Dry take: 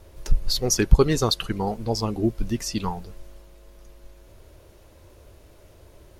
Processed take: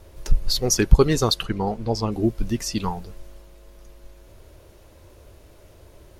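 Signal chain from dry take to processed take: 1.43–2.12 s: treble shelf 7.5 kHz -11.5 dB; trim +1.5 dB

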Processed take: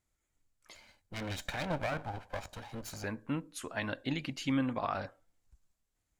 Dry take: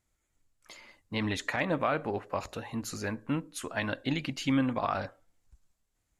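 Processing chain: 0.75–3.04 s: comb filter that takes the minimum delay 1.3 ms; trim -4 dB

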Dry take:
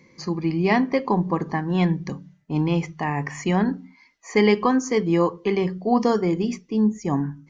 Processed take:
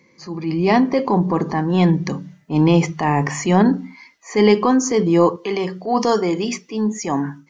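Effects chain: high-pass 170 Hz 6 dB/octave, from 5.36 s 720 Hz; dynamic bell 1.9 kHz, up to -6 dB, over -40 dBFS, Q 1.1; level rider gain up to 12 dB; transient shaper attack -6 dB, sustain +3 dB

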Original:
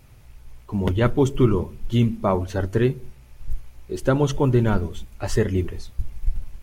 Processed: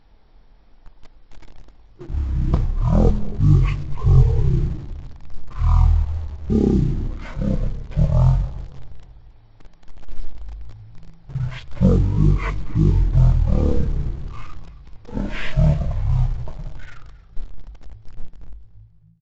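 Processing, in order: fade out at the end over 1.00 s; in parallel at -7 dB: word length cut 6-bit, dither none; on the sum: de-hum 100.9 Hz, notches 12; wide varispeed 0.345×; on a send: frequency-shifting echo 273 ms, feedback 39%, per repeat -56 Hz, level -18 dB; on the sum: tape noise reduction on one side only decoder only

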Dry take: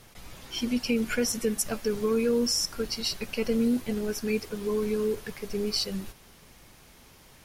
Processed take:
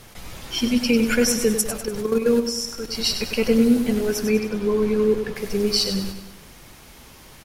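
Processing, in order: 1.61–2.95 s: level held to a coarse grid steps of 12 dB; 4.25–5.36 s: treble shelf 4.9 kHz -11.5 dB; feedback delay 98 ms, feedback 48%, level -8.5 dB; trim +7.5 dB

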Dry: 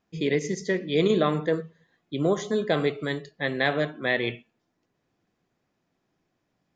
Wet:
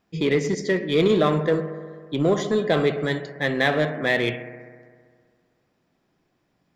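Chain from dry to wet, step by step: band-stop 6.4 kHz, Q 11; bucket-brigade echo 65 ms, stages 1024, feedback 78%, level -15 dB; in parallel at -5.5 dB: hard clipper -27 dBFS, distortion -5 dB; on the sum: trim +1.5 dB

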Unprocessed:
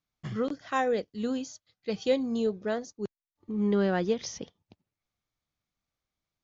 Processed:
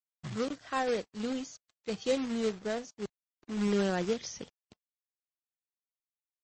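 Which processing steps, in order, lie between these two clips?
companded quantiser 4-bit; trim -3.5 dB; MP3 32 kbps 22.05 kHz

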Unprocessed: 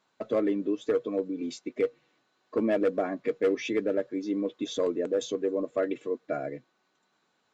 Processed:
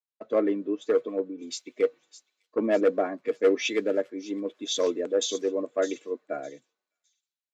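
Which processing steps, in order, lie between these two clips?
high-pass 240 Hz 12 dB/octave; on a send: feedback echo behind a high-pass 609 ms, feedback 46%, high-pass 5.2 kHz, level -4 dB; on the sum: three bands expanded up and down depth 100%; trim +2 dB

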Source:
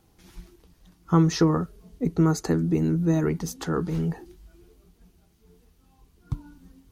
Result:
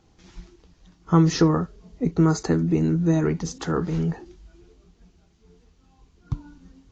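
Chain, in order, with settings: trim +2 dB; AAC 32 kbps 16 kHz

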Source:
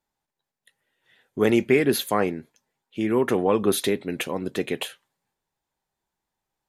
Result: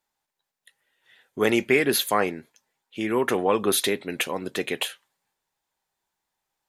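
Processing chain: bass shelf 490 Hz -10 dB; trim +4 dB

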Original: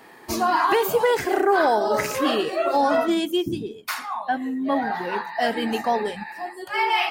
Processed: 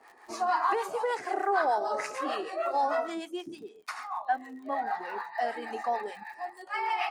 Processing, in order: cabinet simulation 370–9900 Hz, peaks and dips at 760 Hz +7 dB, 1.2 kHz +6 dB, 1.9 kHz +3 dB, 3.3 kHz -6 dB; crackle 69 per s -35 dBFS; harmonic tremolo 6.6 Hz, depth 70%, crossover 650 Hz; trim -7.5 dB

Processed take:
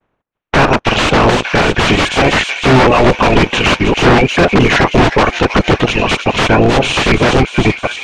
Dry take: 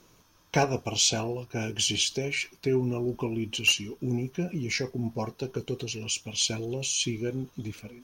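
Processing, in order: spectral peaks clipped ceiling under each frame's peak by 23 dB; reverb removal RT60 1.9 s; expander -54 dBFS; peaking EQ 4.8 kHz -13.5 dB 0.56 oct; waveshaping leveller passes 5; in parallel at +2 dB: level held to a coarse grid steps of 17 dB; on the sum: feedback echo behind a high-pass 314 ms, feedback 67%, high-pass 2.6 kHz, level -7.5 dB; integer overflow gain 9.5 dB; tape spacing loss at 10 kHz 38 dB; loudness maximiser +17 dB; tape noise reduction on one side only decoder only; trim -1 dB

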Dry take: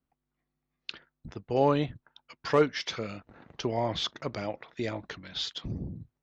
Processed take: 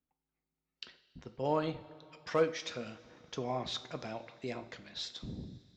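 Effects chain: tape speed +8%; two-slope reverb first 0.45 s, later 2.9 s, from -15 dB, DRR 8.5 dB; trim -7.5 dB

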